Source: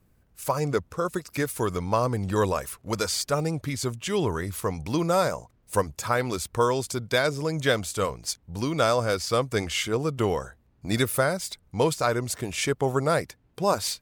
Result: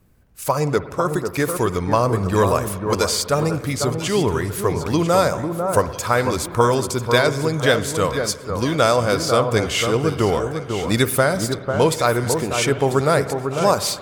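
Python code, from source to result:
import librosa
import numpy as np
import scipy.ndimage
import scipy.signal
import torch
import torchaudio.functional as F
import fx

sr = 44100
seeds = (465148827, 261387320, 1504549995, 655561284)

y = fx.echo_alternate(x, sr, ms=497, hz=1500.0, feedback_pct=50, wet_db=-6)
y = fx.rev_spring(y, sr, rt60_s=1.8, pass_ms=(58,), chirp_ms=60, drr_db=13.5)
y = y * 10.0 ** (6.0 / 20.0)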